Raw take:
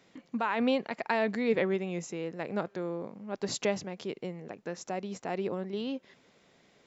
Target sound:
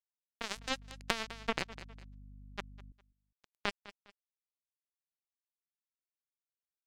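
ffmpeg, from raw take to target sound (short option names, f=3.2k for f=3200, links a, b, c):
-filter_complex "[0:a]bandreject=f=50:t=h:w=6,bandreject=f=100:t=h:w=6,bandreject=f=150:t=h:w=6,bandreject=f=200:t=h:w=6,bandreject=f=250:t=h:w=6,acrusher=bits=2:mix=0:aa=0.5,asettb=1/sr,asplit=3[a][b][c];[a]atrim=end=0.564[d];[b]atrim=start=0.56:end=2.92,asetpts=PTS-STARTPTS,afade=t=in:d=0.004:c=qsin,afade=t=out:st=2.356:d=0.004:c=qsin,aeval=exprs='val(0)+0.001*(sin(2*PI*50*n/s)+sin(2*PI*2*50*n/s)/2+sin(2*PI*3*50*n/s)/3+sin(2*PI*4*50*n/s)/4+sin(2*PI*5*50*n/s)/5)':c=same[e];[c]atrim=start=2.916[f];[d][e]acrossfade=d=0.004:c1=hsin:c2=qsin[g];[g][f]acrossfade=d=0.004:c1=qsin:c2=hsin,aecho=1:1:203|406:0.1|0.031,acompressor=threshold=-36dB:ratio=12,volume=9dB"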